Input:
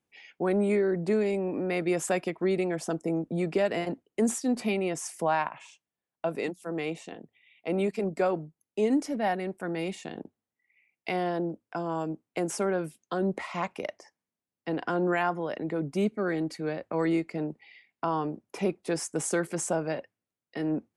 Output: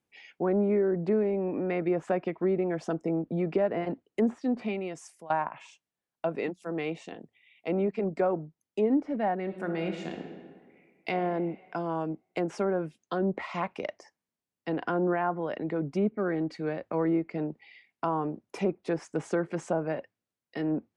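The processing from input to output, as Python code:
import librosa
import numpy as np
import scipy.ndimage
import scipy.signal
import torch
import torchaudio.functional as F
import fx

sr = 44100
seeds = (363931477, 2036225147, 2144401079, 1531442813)

y = fx.reverb_throw(x, sr, start_s=9.43, length_s=1.7, rt60_s=1.7, drr_db=4.5)
y = fx.edit(y, sr, fx.fade_out_to(start_s=4.37, length_s=0.93, floor_db=-22.0), tone=tone)
y = fx.env_lowpass_down(y, sr, base_hz=1300.0, full_db=-23.5)
y = fx.high_shelf(y, sr, hz=8300.0, db=-3.0)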